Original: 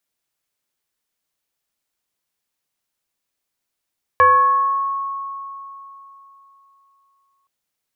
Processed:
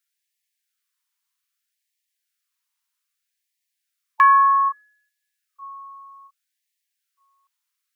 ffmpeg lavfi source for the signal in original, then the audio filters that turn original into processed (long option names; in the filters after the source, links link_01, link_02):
-f lavfi -i "aevalsrc='0.422*pow(10,-3*t/3.42)*sin(2*PI*1100*t+0.8*pow(10,-3*t/1.35)*sin(2*PI*0.54*1100*t))':duration=3.27:sample_rate=44100"
-af "afftfilt=real='re*gte(b*sr/1024,830*pow(1700/830,0.5+0.5*sin(2*PI*0.63*pts/sr)))':imag='im*gte(b*sr/1024,830*pow(1700/830,0.5+0.5*sin(2*PI*0.63*pts/sr)))':win_size=1024:overlap=0.75"